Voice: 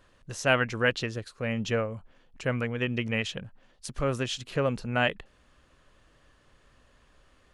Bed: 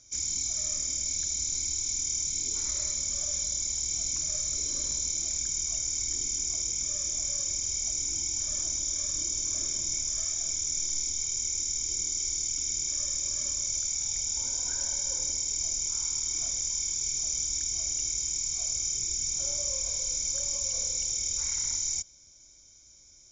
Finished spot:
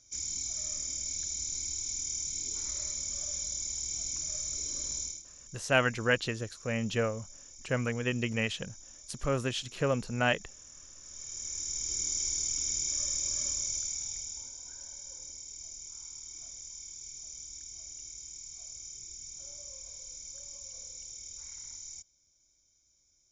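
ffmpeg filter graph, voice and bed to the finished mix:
-filter_complex "[0:a]adelay=5250,volume=0.794[s0];[1:a]volume=5.31,afade=t=out:st=5.01:d=0.22:silence=0.158489,afade=t=in:st=11.01:d=1.09:silence=0.105925,afade=t=out:st=13.46:d=1.07:silence=0.223872[s1];[s0][s1]amix=inputs=2:normalize=0"

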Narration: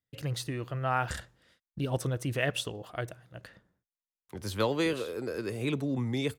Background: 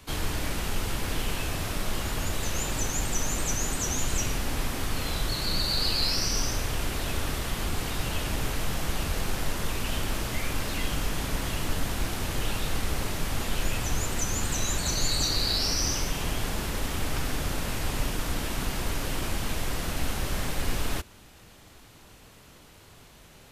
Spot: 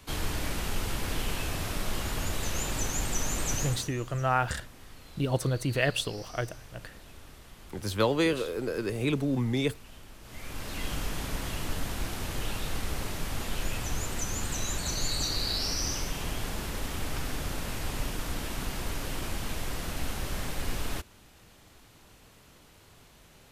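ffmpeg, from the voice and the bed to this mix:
-filter_complex "[0:a]adelay=3400,volume=1.41[s0];[1:a]volume=5.01,afade=t=out:st=3.57:d=0.35:silence=0.125893,afade=t=in:st=10.21:d=0.7:silence=0.158489[s1];[s0][s1]amix=inputs=2:normalize=0"

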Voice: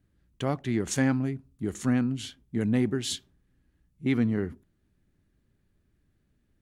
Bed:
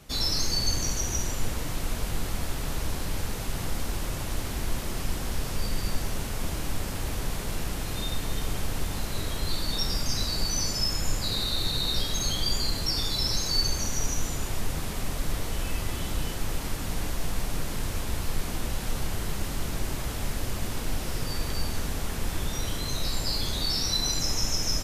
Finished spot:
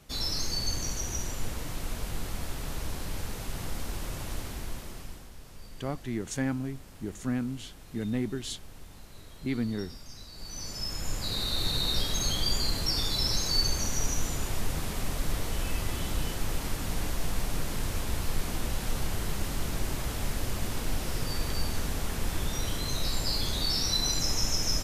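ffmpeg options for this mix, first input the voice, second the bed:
-filter_complex "[0:a]adelay=5400,volume=0.531[s0];[1:a]volume=4.22,afade=t=out:st=4.32:d=0.98:silence=0.211349,afade=t=in:st=10.33:d=1.37:silence=0.141254[s1];[s0][s1]amix=inputs=2:normalize=0"

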